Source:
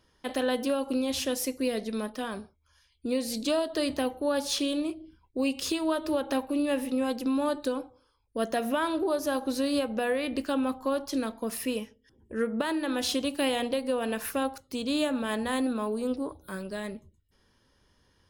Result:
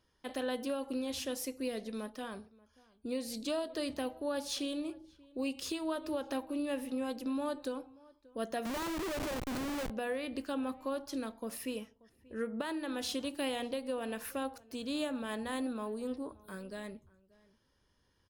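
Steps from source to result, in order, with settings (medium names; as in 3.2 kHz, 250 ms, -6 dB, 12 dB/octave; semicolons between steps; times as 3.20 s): echo from a far wall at 100 m, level -23 dB; 8.65–9.90 s: Schmitt trigger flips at -32 dBFS; trim -8 dB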